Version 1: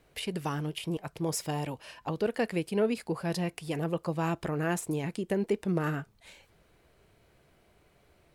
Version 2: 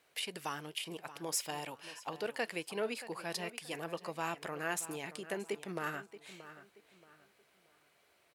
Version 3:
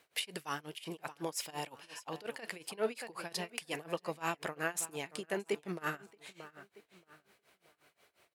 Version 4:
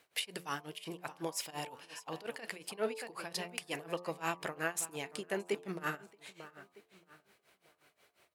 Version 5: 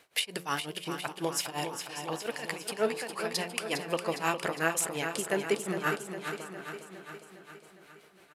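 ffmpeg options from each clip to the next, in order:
-filter_complex "[0:a]highpass=f=1200:p=1,asplit=2[s0][s1];[s1]adelay=628,lowpass=f=4300:p=1,volume=0.2,asplit=2[s2][s3];[s3]adelay=628,lowpass=f=4300:p=1,volume=0.32,asplit=2[s4][s5];[s5]adelay=628,lowpass=f=4300:p=1,volume=0.32[s6];[s0][s2][s4][s6]amix=inputs=4:normalize=0"
-af "tremolo=f=5.6:d=0.93,volume=1.68"
-af "bandreject=f=88.4:t=h:w=4,bandreject=f=176.8:t=h:w=4,bandreject=f=265.2:t=h:w=4,bandreject=f=353.6:t=h:w=4,bandreject=f=442:t=h:w=4,bandreject=f=530.4:t=h:w=4,bandreject=f=618.8:t=h:w=4,bandreject=f=707.2:t=h:w=4,bandreject=f=795.6:t=h:w=4,bandreject=f=884:t=h:w=4,bandreject=f=972.4:t=h:w=4,bandreject=f=1060.8:t=h:w=4,bandreject=f=1149.2:t=h:w=4,bandreject=f=1237.6:t=h:w=4"
-filter_complex "[0:a]aresample=32000,aresample=44100,asplit=2[s0][s1];[s1]aecho=0:1:408|816|1224|1632|2040|2448|2856:0.398|0.235|0.139|0.0818|0.0482|0.0285|0.0168[s2];[s0][s2]amix=inputs=2:normalize=0,volume=2.11"

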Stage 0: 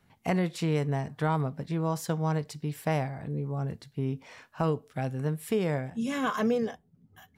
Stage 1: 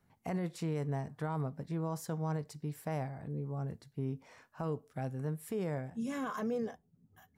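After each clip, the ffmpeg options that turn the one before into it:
-af "alimiter=limit=0.0841:level=0:latency=1:release=23,equalizer=f=3100:t=o:w=1.3:g=-7,volume=0.501"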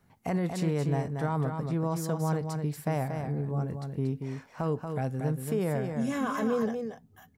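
-af "aecho=1:1:233:0.501,volume=2.11"

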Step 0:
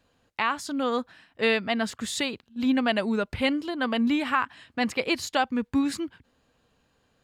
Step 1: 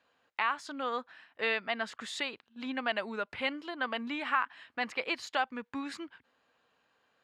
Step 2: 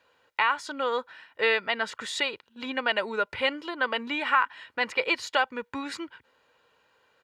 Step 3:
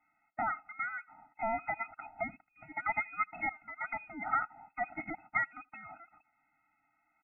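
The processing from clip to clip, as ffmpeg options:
-filter_complex "[0:a]asplit=2[s0][s1];[s1]acompressor=threshold=0.0224:ratio=6,volume=0.944[s2];[s0][s2]amix=inputs=2:normalize=0,bandpass=f=1500:t=q:w=0.65:csg=0,volume=0.531"
-af "aecho=1:1:2.1:0.46,volume=2"
-filter_complex "[0:a]asplit=2[s0][s1];[s1]adelay=80,highpass=300,lowpass=3400,asoftclip=type=hard:threshold=0.141,volume=0.0447[s2];[s0][s2]amix=inputs=2:normalize=0,lowpass=f=2300:t=q:w=0.5098,lowpass=f=2300:t=q:w=0.6013,lowpass=f=2300:t=q:w=0.9,lowpass=f=2300:t=q:w=2.563,afreqshift=-2700,afftfilt=real='re*eq(mod(floor(b*sr/1024/310),2),0)':imag='im*eq(mod(floor(b*sr/1024/310),2),0)':win_size=1024:overlap=0.75,volume=0.596"

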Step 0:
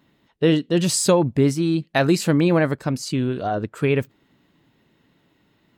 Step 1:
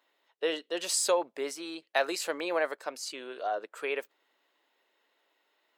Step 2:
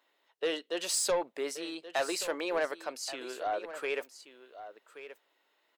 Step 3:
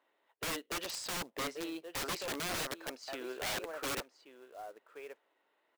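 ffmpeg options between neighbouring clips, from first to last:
-af "highpass=f=480:w=0.5412,highpass=f=480:w=1.3066,volume=0.473"
-af "asoftclip=type=tanh:threshold=0.075,aecho=1:1:1128:0.211"
-af "adynamicsmooth=sensitivity=2.5:basefreq=2600,acrusher=bits=4:mode=log:mix=0:aa=0.000001,aeval=exprs='(mod(37.6*val(0)+1,2)-1)/37.6':c=same"

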